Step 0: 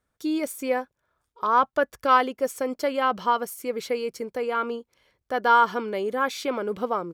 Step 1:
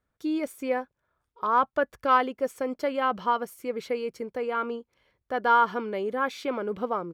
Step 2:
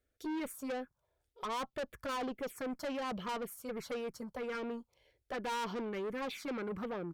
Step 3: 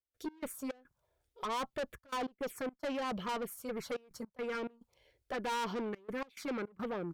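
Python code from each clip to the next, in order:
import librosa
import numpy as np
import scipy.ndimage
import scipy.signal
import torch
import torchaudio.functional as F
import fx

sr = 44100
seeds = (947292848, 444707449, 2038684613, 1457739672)

y1 = fx.bass_treble(x, sr, bass_db=2, treble_db=-8)
y1 = F.gain(torch.from_numpy(y1), -2.5).numpy()
y2 = fx.env_phaser(y1, sr, low_hz=170.0, high_hz=1900.0, full_db=-22.0)
y2 = fx.tube_stage(y2, sr, drive_db=36.0, bias=0.2)
y2 = F.gain(torch.from_numpy(y2), 1.0).numpy()
y3 = fx.step_gate(y2, sr, bpm=106, pattern='.x.xx.xxxxxxxx', floor_db=-24.0, edge_ms=4.5)
y3 = F.gain(torch.from_numpy(y3), 1.5).numpy()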